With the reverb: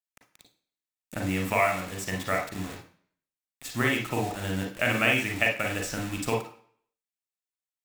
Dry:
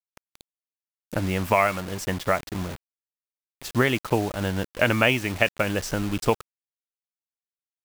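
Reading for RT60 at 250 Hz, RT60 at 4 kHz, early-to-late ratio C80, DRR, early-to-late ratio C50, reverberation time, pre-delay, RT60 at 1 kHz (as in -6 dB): 0.45 s, 0.55 s, 12.5 dB, 1.0 dB, 5.5 dB, 0.50 s, 37 ms, 0.55 s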